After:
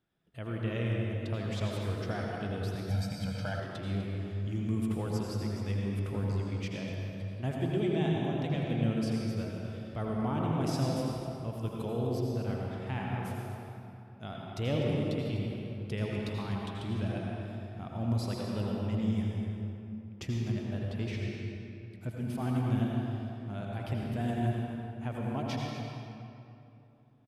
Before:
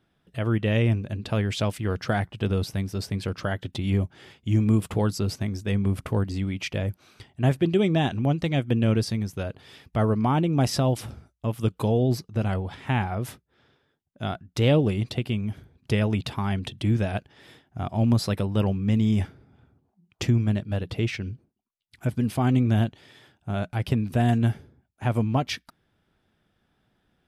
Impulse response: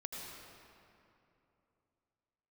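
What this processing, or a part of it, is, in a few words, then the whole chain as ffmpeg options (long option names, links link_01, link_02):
cave: -filter_complex "[0:a]aecho=1:1:250:0.237[link_01];[1:a]atrim=start_sample=2205[link_02];[link_01][link_02]afir=irnorm=-1:irlink=0,asettb=1/sr,asplit=3[link_03][link_04][link_05];[link_03]atrim=end=2.904[link_06];[link_04]atrim=start=2.9:end=3.6,asetpts=PTS-STARTPTS,afade=type=in:duration=0.004:curve=qsin,afade=type=out:start_time=0.696:duration=0.004:curve=qsin,aecho=1:1:1.3:0.98,atrim=end_sample=30870[link_07];[link_05]atrim=start=3.596[link_08];[link_06][link_07]acrossfade=duration=0.004:curve1=hsin:curve2=qsin[link_09];[link_09][link_08]acrossfade=duration=0.004:curve1=qsin:curve2=hsin,volume=-8dB"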